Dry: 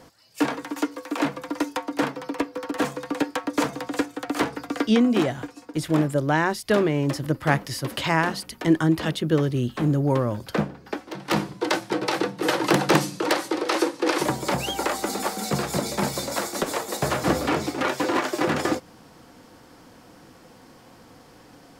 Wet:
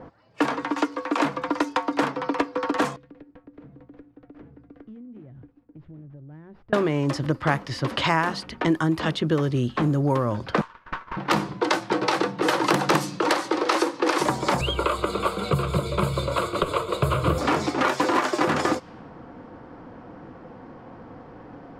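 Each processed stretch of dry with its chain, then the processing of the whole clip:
0:02.96–0:06.73: guitar amp tone stack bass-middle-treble 10-0-1 + downward compressor, threshold −48 dBFS + windowed peak hold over 5 samples
0:10.61–0:11.17: linear-phase brick-wall high-pass 880 Hz + windowed peak hold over 9 samples
0:14.61–0:17.38: bass and treble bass +13 dB, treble 0 dB + phaser with its sweep stopped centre 1,200 Hz, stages 8
whole clip: downward compressor 2.5 to 1, threshold −31 dBFS; dynamic equaliser 1,100 Hz, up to +5 dB, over −49 dBFS, Q 2; low-pass that shuts in the quiet parts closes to 1,100 Hz, open at −24.5 dBFS; level +7.5 dB

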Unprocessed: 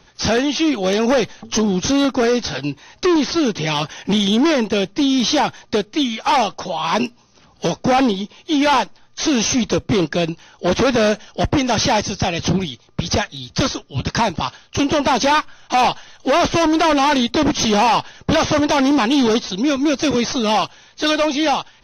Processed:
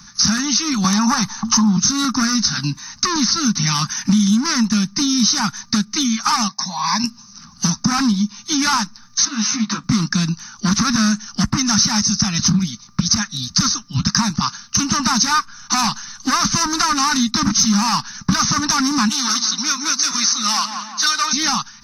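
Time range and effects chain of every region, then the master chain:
0:00.84–0:01.77: parametric band 900 Hz +14.5 dB 0.68 octaves + multiband upward and downward compressor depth 40%
0:06.48–0:07.04: high-pass filter 140 Hz + bass and treble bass −7 dB, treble −2 dB + phaser with its sweep stopped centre 2,000 Hz, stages 8
0:09.25–0:09.84: downward compressor 5 to 1, threshold −19 dBFS + band-pass filter 320–3,200 Hz + double-tracking delay 14 ms −2.5 dB
0:19.09–0:21.33: Bessel high-pass filter 720 Hz + feedback echo with a low-pass in the loop 176 ms, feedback 51%, low-pass 3,000 Hz, level −10 dB
whole clip: drawn EQ curve 110 Hz 0 dB, 210 Hz +12 dB, 480 Hz −29 dB, 1,200 Hz +9 dB, 2,800 Hz −4 dB, 5,300 Hz +15 dB; downward compressor 3 to 1, threshold −18 dBFS; notch filter 3,300 Hz, Q 9.5; level +2.5 dB

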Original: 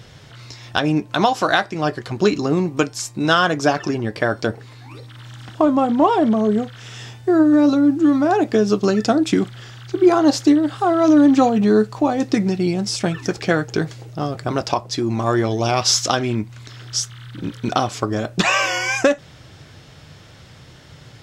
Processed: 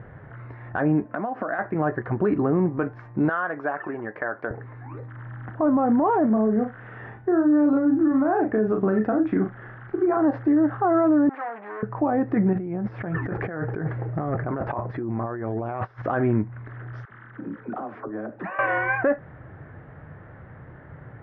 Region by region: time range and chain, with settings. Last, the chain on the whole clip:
0:01.04–0:01.59: downward compressor 16 to 1, threshold −24 dBFS + loudspeaker in its box 200–7,900 Hz, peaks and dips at 240 Hz +8 dB, 380 Hz −4 dB, 640 Hz +4 dB, 910 Hz −6 dB, 3,500 Hz −4 dB
0:03.29–0:04.51: high-pass filter 850 Hz 6 dB per octave + downward compressor 2 to 1, threshold −27 dBFS
0:06.26–0:10.17: downward compressor 2.5 to 1, threshold −17 dBFS + shaped tremolo saw up 1.1 Hz, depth 35% + double-tracking delay 37 ms −5 dB
0:11.29–0:11.83: spectral tilt +3 dB per octave + tube saturation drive 27 dB, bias 0.4 + band-pass filter 640–6,500 Hz
0:12.53–0:16.02: compressor whose output falls as the input rises −28 dBFS + hard clipping −20.5 dBFS
0:17.05–0:18.59: downward compressor 8 to 1, threshold −29 dBFS + low shelf with overshoot 170 Hz −10 dB, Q 1.5 + all-pass dispersion lows, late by 68 ms, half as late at 330 Hz
whole clip: Chebyshev low-pass filter 1,800 Hz, order 4; brickwall limiter −15 dBFS; level +1.5 dB

